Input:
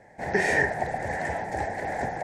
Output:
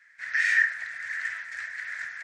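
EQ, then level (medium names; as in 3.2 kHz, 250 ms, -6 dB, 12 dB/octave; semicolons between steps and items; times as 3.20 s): elliptic high-pass 1.3 kHz, stop band 40 dB; tape spacing loss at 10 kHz 22 dB; treble shelf 5 kHz +8.5 dB; +7.0 dB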